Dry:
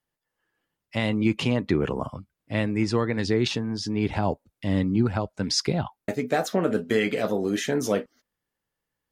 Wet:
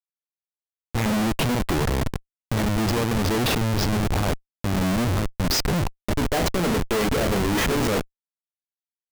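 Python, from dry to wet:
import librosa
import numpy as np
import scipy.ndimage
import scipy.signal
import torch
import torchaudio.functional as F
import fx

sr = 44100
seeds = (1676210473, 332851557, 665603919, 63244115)

y = fx.schmitt(x, sr, flips_db=-29.0)
y = y * 10.0 ** (5.0 / 20.0)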